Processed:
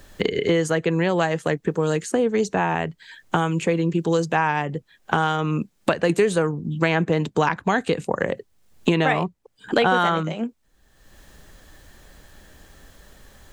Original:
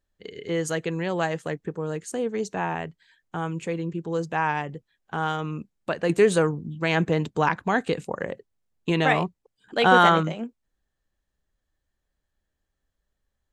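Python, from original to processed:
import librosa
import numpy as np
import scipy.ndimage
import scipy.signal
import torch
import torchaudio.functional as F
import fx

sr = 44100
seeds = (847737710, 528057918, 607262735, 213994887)

y = fx.band_squash(x, sr, depth_pct=100)
y = F.gain(torch.from_numpy(y), 3.5).numpy()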